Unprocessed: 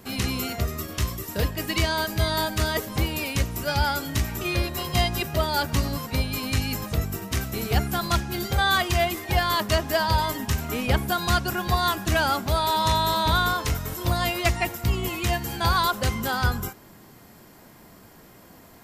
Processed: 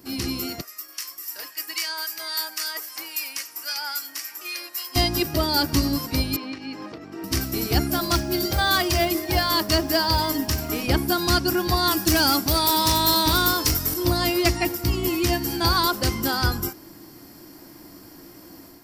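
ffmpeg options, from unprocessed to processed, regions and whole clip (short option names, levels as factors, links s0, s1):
-filter_complex "[0:a]asettb=1/sr,asplit=3[s0][s1][s2];[s0]atrim=end=0.614[s3];[s1]atrim=start=0.61:end=4.96,asetpts=PTS-STARTPTS,afade=t=in:d=0.004:c=qsin,afade=t=out:st=4.346:d=0.004:c=qsin,highpass=1400,equalizer=f=3700:t=o:w=0.69:g=-7,acrossover=split=1400[s4][s5];[s4]aeval=exprs='val(0)*(1-0.5/2+0.5/2*cos(2*PI*3.7*n/s))':c=same[s6];[s5]aeval=exprs='val(0)*(1-0.5/2-0.5/2*cos(2*PI*3.7*n/s))':c=same[s7];[s6][s7]amix=inputs=2:normalize=0[s8];[s2]atrim=start=4.956[s9];[s3][s8]acrossfade=d=0.004:c1=hsin:c2=qsin[s10];[s10][s9]acrossfade=d=0.004:c1=qsin:c2=hsin,asettb=1/sr,asplit=3[s11][s12][s13];[s11]atrim=end=6.364[s14];[s12]atrim=start=6.36:end=7.24,asetpts=PTS-STARTPTS,afade=t=in:d=0.004:c=qsin,afade=t=out:st=0.876:d=0.004:c=qsin,acompressor=threshold=0.0398:ratio=6:attack=3.2:release=140:knee=1:detection=peak,highpass=280,lowpass=2600[s15];[s13]atrim=start=7.236[s16];[s14][s15]acrossfade=d=0.004:c1=hsin:c2=qsin[s17];[s17][s16]acrossfade=d=0.004:c1=qsin:c2=hsin,asettb=1/sr,asplit=3[s18][s19][s20];[s18]atrim=end=7.904[s21];[s19]atrim=start=7.9:end=10.83,asetpts=PTS-STARTPTS,afade=t=in:d=0.004:c=qsin,afade=t=out:st=2.926:d=0.004:c=qsin,bandreject=f=50:t=h:w=6,bandreject=f=100:t=h:w=6,bandreject=f=150:t=h:w=6,bandreject=f=200:t=h:w=6,bandreject=f=250:t=h:w=6,bandreject=f=300:t=h:w=6,bandreject=f=350:t=h:w=6,bandreject=f=400:t=h:w=6,bandreject=f=450:t=h:w=6,bandreject=f=500:t=h:w=6,aeval=exprs='val(0)+0.0158*sin(2*PI*630*n/s)':c=same,acrusher=bits=8:mode=log:mix=0:aa=0.000001[s22];[s20]atrim=start=10.826[s23];[s21][s22]acrossfade=d=0.004:c1=hsin:c2=qsin[s24];[s24][s23]acrossfade=d=0.004:c1=qsin:c2=hsin,asettb=1/sr,asplit=3[s25][s26][s27];[s25]atrim=end=11.914[s28];[s26]atrim=start=11.91:end=13.94,asetpts=PTS-STARTPTS,afade=t=in:d=0.004:c=qsin,afade=t=out:st=2.026:d=0.004:c=qsin,highshelf=f=4500:g=8.5,asoftclip=type=hard:threshold=0.15[s29];[s27]atrim=start=13.936[s30];[s28][s29]acrossfade=d=0.004:c1=hsin:c2=qsin[s31];[s31][s30]acrossfade=d=0.004:c1=qsin:c2=hsin,superequalizer=6b=3.55:14b=2.51,dynaudnorm=f=750:g=3:m=2,highshelf=f=11000:g=10.5,volume=0.531"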